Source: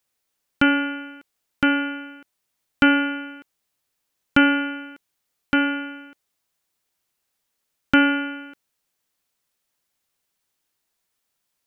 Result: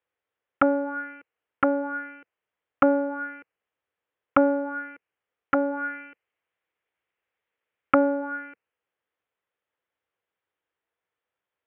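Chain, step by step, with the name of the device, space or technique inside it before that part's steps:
envelope filter bass rig (envelope-controlled low-pass 660–3,400 Hz down, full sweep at −17.5 dBFS; loudspeaker in its box 74–2,000 Hz, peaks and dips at 150 Hz −8 dB, 230 Hz −9 dB, 480 Hz +7 dB)
0:05.77–0:07.95: parametric band 2,300 Hz +5.5 dB 0.85 octaves
level −4 dB

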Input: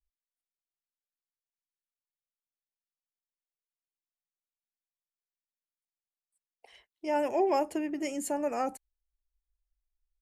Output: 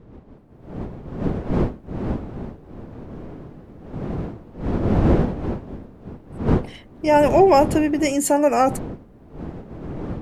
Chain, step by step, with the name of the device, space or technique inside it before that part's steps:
smartphone video outdoors (wind on the microphone 300 Hz −40 dBFS; automatic gain control gain up to 14.5 dB; AAC 96 kbit/s 48,000 Hz)

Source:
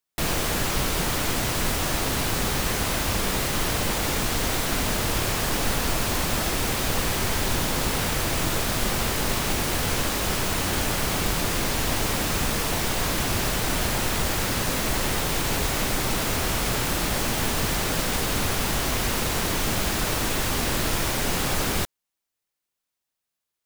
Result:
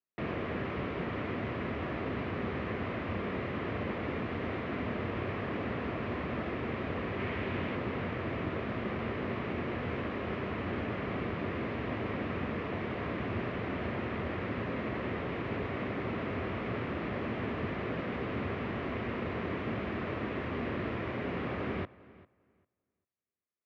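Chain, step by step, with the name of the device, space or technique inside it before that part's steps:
bass cabinet (loudspeaker in its box 78–2,200 Hz, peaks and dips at 150 Hz −4 dB, 230 Hz +3 dB, 390 Hz +3 dB, 850 Hz −8 dB, 1,500 Hz −6 dB)
0:07.19–0:07.76: parametric band 2,600 Hz +4.5 dB 1.2 octaves
feedback echo with a low-pass in the loop 398 ms, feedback 17%, low-pass 3,500 Hz, level −20.5 dB
level −6.5 dB

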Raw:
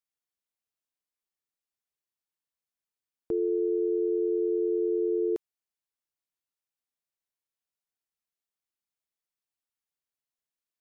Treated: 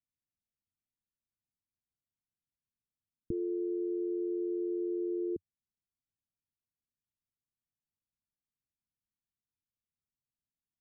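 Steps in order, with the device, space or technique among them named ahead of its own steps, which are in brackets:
the neighbour's flat through the wall (low-pass filter 260 Hz 24 dB per octave; parametric band 94 Hz +5 dB 0.65 octaves)
level +6 dB

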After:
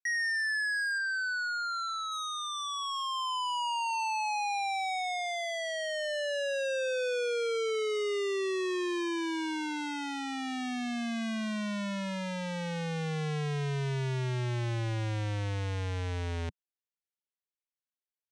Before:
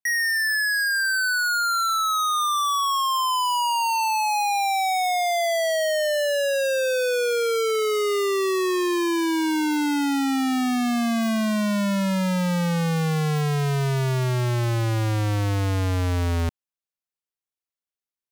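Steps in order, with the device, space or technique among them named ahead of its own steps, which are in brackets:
car door speaker (loudspeaker in its box 100–7,600 Hz, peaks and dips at 180 Hz −7 dB, 280 Hz −9 dB, 660 Hz −7 dB, 1,200 Hz −9 dB, 4,800 Hz −6 dB, 7,100 Hz −5 dB)
0:00.98–0:02.12: high-frequency loss of the air 63 metres
level −6.5 dB

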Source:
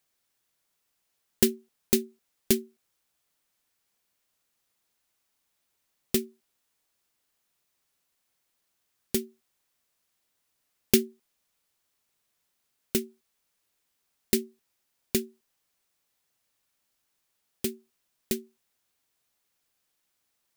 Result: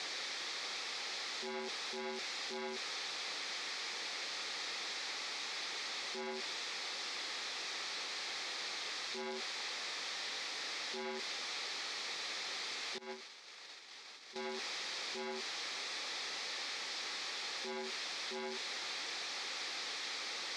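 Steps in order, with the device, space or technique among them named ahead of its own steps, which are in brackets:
home computer beeper (sign of each sample alone; loudspeaker in its box 590–4,700 Hz, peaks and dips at 640 Hz −9 dB, 1,000 Hz −8 dB, 1,500 Hz −8 dB, 2,900 Hz −9 dB)
0:12.98–0:14.36: noise gate −45 dBFS, range −21 dB
level +5.5 dB

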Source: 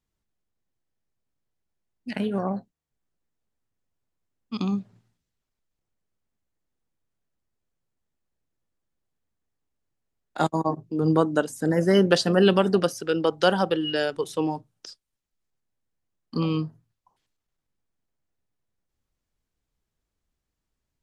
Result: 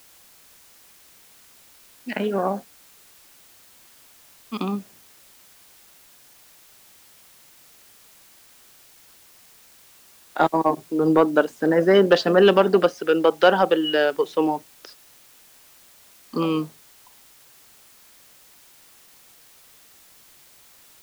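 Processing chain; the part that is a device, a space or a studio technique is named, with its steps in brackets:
tape answering machine (band-pass filter 310–2,900 Hz; soft clipping −11 dBFS, distortion −20 dB; tape wow and flutter 17 cents; white noise bed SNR 27 dB)
level +7 dB

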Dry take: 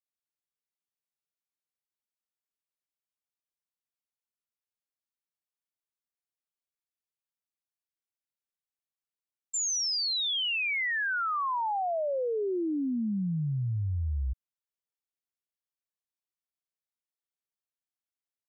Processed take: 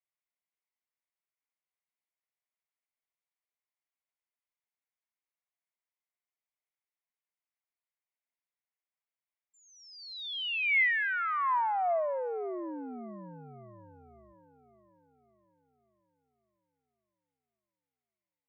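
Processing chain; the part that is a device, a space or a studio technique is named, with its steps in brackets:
0:09.65–0:10.63: Butterworth high-pass 2,100 Hz 48 dB per octave
phone earpiece (loudspeaker in its box 400–3,100 Hz, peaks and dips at 680 Hz +6 dB, 1,000 Hz +6 dB, 2,100 Hz +10 dB)
echo with a time of its own for lows and highs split 1,300 Hz, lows 561 ms, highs 226 ms, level −15.5 dB
level −4 dB

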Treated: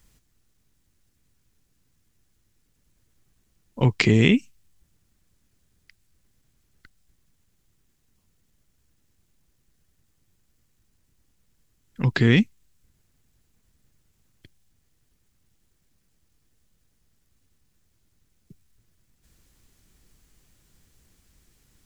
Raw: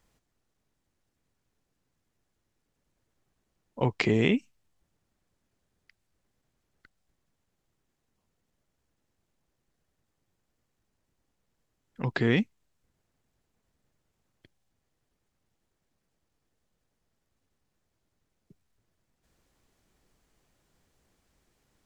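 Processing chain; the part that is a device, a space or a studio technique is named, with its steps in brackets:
smiley-face EQ (low-shelf EQ 120 Hz +6 dB; parametric band 680 Hz −8 dB 1.8 octaves; high-shelf EQ 6,700 Hz +7 dB)
level +7.5 dB

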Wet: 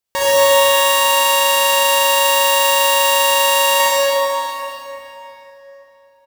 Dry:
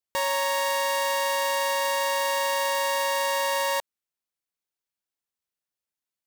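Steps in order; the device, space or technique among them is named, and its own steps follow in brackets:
cave (single-tap delay 360 ms −13 dB; convolution reverb RT60 3.5 s, pre-delay 38 ms, DRR −8 dB)
level +6.5 dB

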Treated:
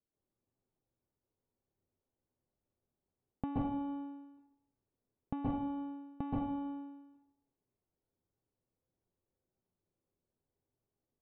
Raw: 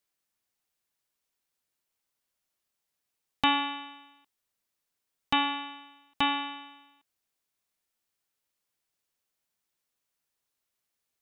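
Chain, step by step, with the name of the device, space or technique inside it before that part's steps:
television next door (downward compressor 4 to 1, threshold −32 dBFS, peak gain reduction 10.5 dB; low-pass filter 390 Hz 12 dB per octave; convolution reverb RT60 0.65 s, pre-delay 119 ms, DRR −6.5 dB)
level +3 dB

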